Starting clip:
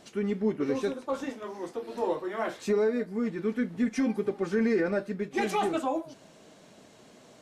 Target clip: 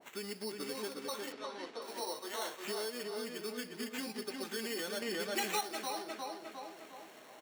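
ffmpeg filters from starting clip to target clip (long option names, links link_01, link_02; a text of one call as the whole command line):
ffmpeg -i in.wav -filter_complex "[0:a]equalizer=frequency=900:width_type=o:width=0.77:gain=2,acrusher=samples=9:mix=1:aa=0.000001,asplit=2[link_01][link_02];[link_02]adelay=356,lowpass=frequency=3600:poles=1,volume=-4dB,asplit=2[link_03][link_04];[link_04]adelay=356,lowpass=frequency=3600:poles=1,volume=0.4,asplit=2[link_05][link_06];[link_06]adelay=356,lowpass=frequency=3600:poles=1,volume=0.4,asplit=2[link_07][link_08];[link_08]adelay=356,lowpass=frequency=3600:poles=1,volume=0.4,asplit=2[link_09][link_10];[link_10]adelay=356,lowpass=frequency=3600:poles=1,volume=0.4[link_11];[link_01][link_03][link_05][link_07][link_09][link_11]amix=inputs=6:normalize=0,asettb=1/sr,asplit=3[link_12][link_13][link_14];[link_12]atrim=end=5.024[link_15];[link_13]atrim=start=5.02:end=5.61,asetpts=PTS-STARTPTS,afade=type=in:duration=0.004:curve=qsin,afade=type=out:start_time=0.586:duration=0.004:curve=qsin,acontrast=84[link_16];[link_14]atrim=start=5.606[link_17];[link_15][link_16]acrossfade=duration=0.004:curve1=hsin:curve2=qsin[link_18];[link_18][link_17]acrossfade=duration=0.004:curve1=qsin:curve2=hsin,highpass=frequency=700:poles=1,acompressor=threshold=-43dB:ratio=2,asettb=1/sr,asplit=3[link_19][link_20][link_21];[link_19]atrim=end=1.324[link_22];[link_20]atrim=start=1.32:end=1.82,asetpts=PTS-STARTPTS,afade=type=in:duration=0.004:curve=qsin,afade=type=out:start_time=0.496:duration=0.004:curve=qsin,lowpass=4600[link_23];[link_21]atrim=start=1.816[link_24];[link_22][link_23]acrossfade=duration=0.004:curve1=hsin:curve2=qsin[link_25];[link_25][link_24]acrossfade=duration=0.004:curve1=qsin:curve2=hsin,adynamicequalizer=threshold=0.002:dfrequency=1500:dqfactor=0.7:tfrequency=1500:tqfactor=0.7:attack=5:release=100:ratio=0.375:range=2.5:mode=boostabove:tftype=highshelf,volume=-1dB" out.wav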